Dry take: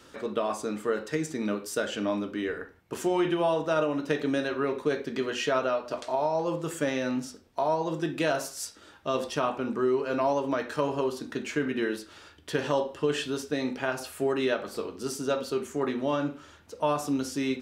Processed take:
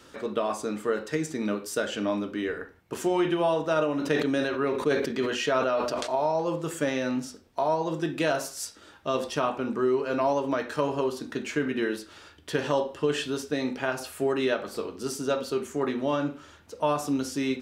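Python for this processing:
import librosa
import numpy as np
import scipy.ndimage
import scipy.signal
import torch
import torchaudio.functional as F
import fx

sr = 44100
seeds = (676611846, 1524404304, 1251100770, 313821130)

y = fx.sustainer(x, sr, db_per_s=46.0, at=(3.99, 6.31), fade=0.02)
y = y * librosa.db_to_amplitude(1.0)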